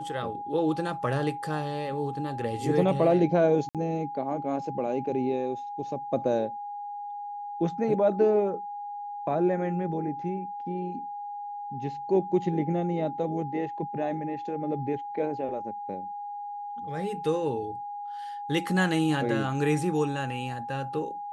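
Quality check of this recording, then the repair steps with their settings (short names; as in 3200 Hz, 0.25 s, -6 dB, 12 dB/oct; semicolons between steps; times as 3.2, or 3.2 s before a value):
tone 820 Hz -34 dBFS
3.69–3.75 gap 57 ms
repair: notch 820 Hz, Q 30; interpolate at 3.69, 57 ms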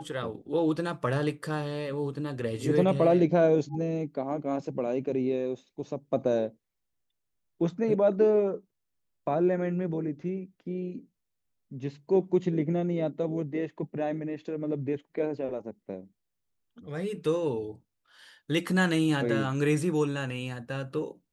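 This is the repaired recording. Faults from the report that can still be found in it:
none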